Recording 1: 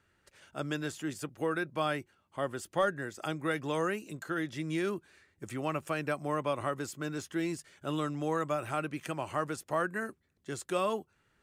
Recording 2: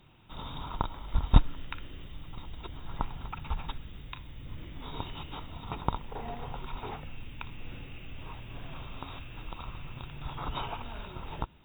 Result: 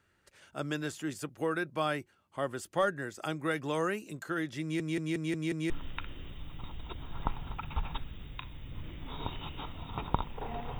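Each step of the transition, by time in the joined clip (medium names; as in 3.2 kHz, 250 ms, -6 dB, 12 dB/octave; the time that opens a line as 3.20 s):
recording 1
4.62 s: stutter in place 0.18 s, 6 plays
5.70 s: go over to recording 2 from 1.44 s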